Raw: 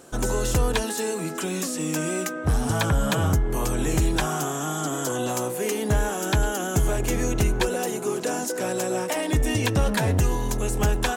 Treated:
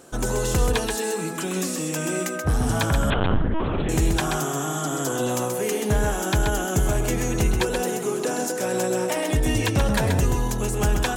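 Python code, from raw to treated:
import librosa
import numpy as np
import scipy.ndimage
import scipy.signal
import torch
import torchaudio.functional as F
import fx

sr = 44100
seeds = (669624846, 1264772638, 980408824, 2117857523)

y = x + 10.0 ** (-5.5 / 20.0) * np.pad(x, (int(130 * sr / 1000.0), 0))[:len(x)]
y = fx.lpc_vocoder(y, sr, seeds[0], excitation='pitch_kept', order=10, at=(3.1, 3.89))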